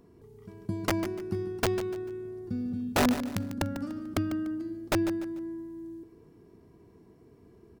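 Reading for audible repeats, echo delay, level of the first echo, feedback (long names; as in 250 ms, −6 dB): 3, 147 ms, −11.5 dB, 33%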